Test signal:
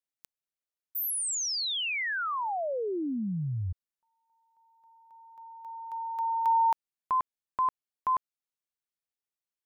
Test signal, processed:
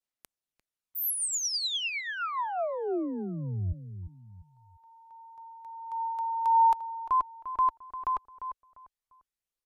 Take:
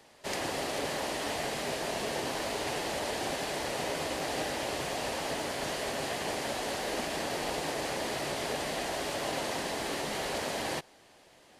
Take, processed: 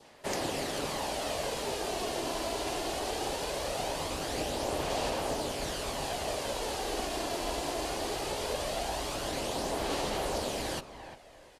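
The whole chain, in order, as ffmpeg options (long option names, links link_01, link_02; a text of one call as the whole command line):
ffmpeg -i in.wav -filter_complex "[0:a]asplit=2[link_01][link_02];[link_02]adelay=348,lowpass=frequency=1800:poles=1,volume=-11dB,asplit=2[link_03][link_04];[link_04]adelay=348,lowpass=frequency=1800:poles=1,volume=0.31,asplit=2[link_05][link_06];[link_06]adelay=348,lowpass=frequency=1800:poles=1,volume=0.31[link_07];[link_03][link_05][link_07]amix=inputs=3:normalize=0[link_08];[link_01][link_08]amix=inputs=2:normalize=0,adynamicequalizer=threshold=0.00251:dfrequency=1900:dqfactor=2.1:tfrequency=1900:tqfactor=2.1:attack=5:release=100:ratio=0.375:range=3.5:mode=cutabove:tftype=bell,aresample=32000,aresample=44100,aphaser=in_gain=1:out_gain=1:delay=3:decay=0.32:speed=0.2:type=sinusoidal,asubboost=boost=3.5:cutoff=69" out.wav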